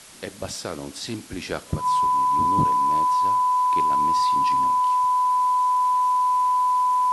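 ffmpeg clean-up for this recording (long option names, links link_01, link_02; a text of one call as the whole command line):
ffmpeg -i in.wav -af "bandreject=frequency=1000:width=30,afwtdn=0.0063" out.wav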